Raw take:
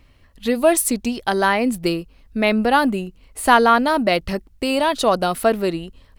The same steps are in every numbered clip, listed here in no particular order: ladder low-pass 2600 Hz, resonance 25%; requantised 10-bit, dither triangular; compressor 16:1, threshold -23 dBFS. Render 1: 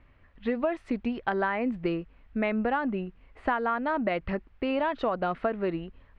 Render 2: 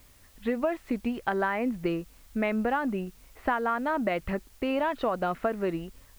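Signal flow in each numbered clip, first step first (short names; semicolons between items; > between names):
requantised > ladder low-pass > compressor; ladder low-pass > compressor > requantised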